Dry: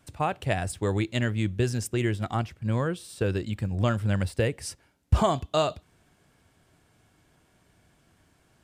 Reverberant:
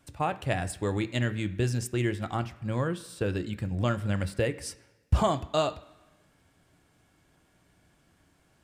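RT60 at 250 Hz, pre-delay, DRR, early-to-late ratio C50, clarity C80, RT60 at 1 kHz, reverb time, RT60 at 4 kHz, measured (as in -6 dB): 1.0 s, 3 ms, 10.0 dB, 16.0 dB, 18.5 dB, 1.1 s, 1.1 s, 1.2 s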